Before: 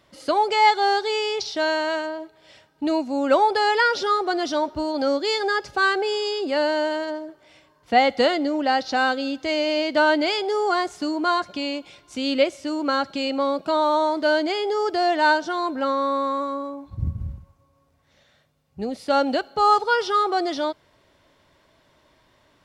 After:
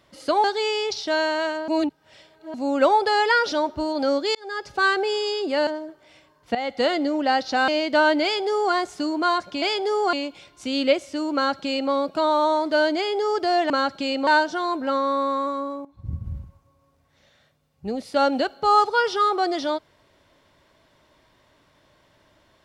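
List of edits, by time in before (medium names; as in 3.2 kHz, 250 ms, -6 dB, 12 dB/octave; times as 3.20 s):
0.44–0.93 s: delete
2.17–3.03 s: reverse
4.01–4.51 s: delete
5.34–5.80 s: fade in
6.66–7.07 s: delete
7.95–8.37 s: fade in, from -15.5 dB
9.08–9.70 s: delete
10.25–10.76 s: copy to 11.64 s
12.85–13.42 s: copy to 15.21 s
16.79–17.33 s: fade in, from -15.5 dB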